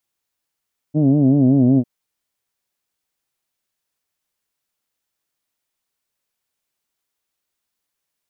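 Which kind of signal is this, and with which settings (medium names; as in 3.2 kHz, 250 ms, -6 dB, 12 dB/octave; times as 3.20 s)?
formant vowel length 0.90 s, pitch 146 Hz, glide -2.5 st, vibrato depth 1.15 st, F1 260 Hz, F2 640 Hz, F3 2.9 kHz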